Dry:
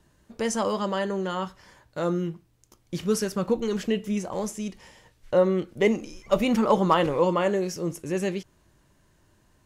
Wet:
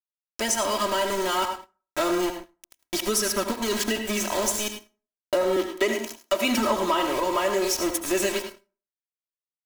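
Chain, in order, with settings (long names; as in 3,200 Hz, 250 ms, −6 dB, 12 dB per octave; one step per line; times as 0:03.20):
spectral tilt +2.5 dB per octave
centre clipping without the shift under −32 dBFS
single-tap delay 105 ms −15.5 dB
downward compressor, threshold −29 dBFS, peak gain reduction 13 dB
0:05.56–0:06.58: Butterworth high-pass 210 Hz 36 dB per octave
speech leveller 2 s
convolution reverb RT60 0.40 s, pre-delay 67 ms, DRR 8 dB
leveller curve on the samples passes 2
comb filter 3.1 ms, depth 93%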